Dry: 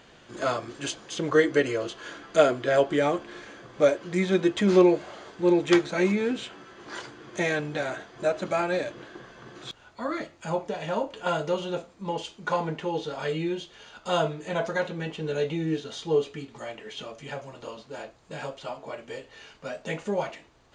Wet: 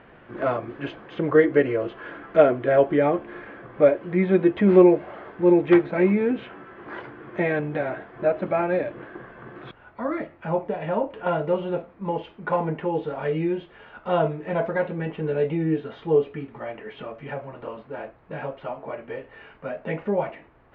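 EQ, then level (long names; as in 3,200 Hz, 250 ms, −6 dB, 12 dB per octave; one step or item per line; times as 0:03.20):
low-pass filter 2,200 Hz 24 dB per octave
dynamic equaliser 1,400 Hz, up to −5 dB, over −42 dBFS, Q 1.3
+4.5 dB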